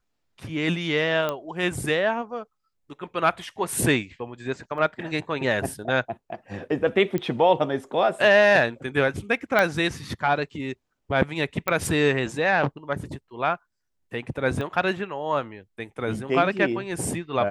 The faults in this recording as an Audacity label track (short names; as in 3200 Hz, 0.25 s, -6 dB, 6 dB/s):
1.290000	1.290000	pop -13 dBFS
4.780000	4.780000	gap 2.1 ms
7.180000	7.180000	pop -15 dBFS
9.590000	9.590000	pop -8 dBFS
11.680000	11.680000	pop -9 dBFS
14.610000	14.610000	pop -20 dBFS